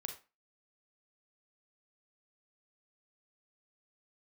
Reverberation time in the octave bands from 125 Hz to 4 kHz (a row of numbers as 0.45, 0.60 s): 0.20, 0.35, 0.30, 0.30, 0.30, 0.25 s